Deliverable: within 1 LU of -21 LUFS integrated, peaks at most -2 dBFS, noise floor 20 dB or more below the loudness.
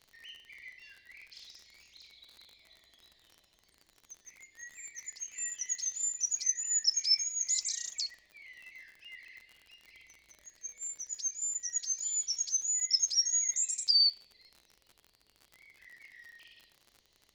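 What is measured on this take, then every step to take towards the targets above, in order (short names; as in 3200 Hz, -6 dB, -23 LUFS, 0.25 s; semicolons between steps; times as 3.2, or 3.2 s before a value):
ticks 48/s; loudness -29.5 LUFS; peak -15.0 dBFS; loudness target -21.0 LUFS
-> de-click; gain +8.5 dB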